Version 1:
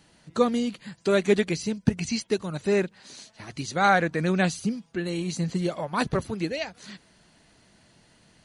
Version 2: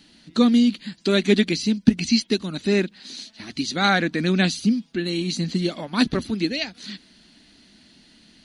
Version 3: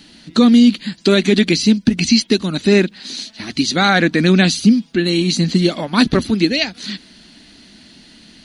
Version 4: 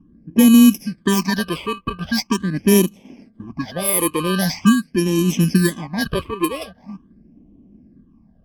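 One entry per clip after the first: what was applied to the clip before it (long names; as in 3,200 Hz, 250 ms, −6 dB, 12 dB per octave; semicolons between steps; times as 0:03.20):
octave-band graphic EQ 125/250/500/1,000/4,000/8,000 Hz −11/+11/−7/−6/+9/−5 dB; level +3.5 dB
boost into a limiter +10.5 dB; level −1.5 dB
samples in bit-reversed order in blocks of 32 samples; all-pass phaser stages 8, 0.43 Hz, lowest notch 210–1,500 Hz; low-pass that shuts in the quiet parts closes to 450 Hz, open at −11 dBFS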